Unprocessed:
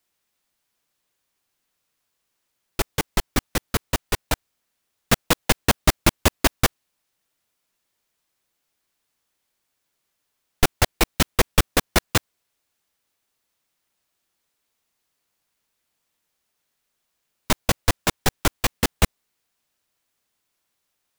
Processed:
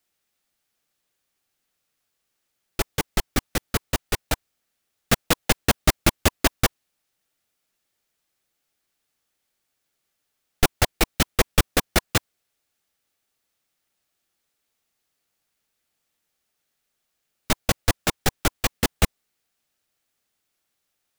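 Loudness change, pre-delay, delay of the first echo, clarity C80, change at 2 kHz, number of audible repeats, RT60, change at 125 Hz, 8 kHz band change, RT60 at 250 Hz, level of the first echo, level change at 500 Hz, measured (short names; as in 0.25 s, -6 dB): -1.0 dB, none, none, none, -1.0 dB, none, none, -1.0 dB, -1.0 dB, none, none, -1.0 dB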